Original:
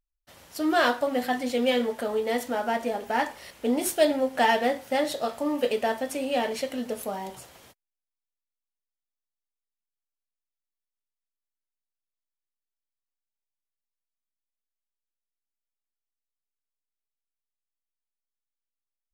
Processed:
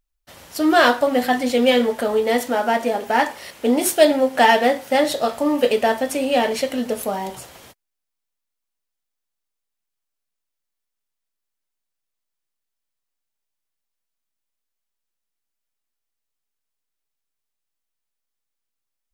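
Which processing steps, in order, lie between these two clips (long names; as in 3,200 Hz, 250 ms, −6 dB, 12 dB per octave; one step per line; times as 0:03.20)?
0:02.42–0:04.95: high-pass filter 130 Hz 6 dB per octave
level +8 dB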